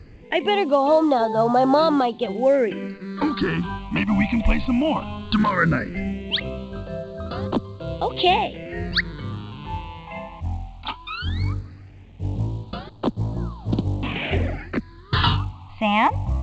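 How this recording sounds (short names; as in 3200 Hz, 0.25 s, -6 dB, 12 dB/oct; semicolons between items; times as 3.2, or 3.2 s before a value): phasing stages 6, 0.17 Hz, lowest notch 400–2100 Hz; µ-law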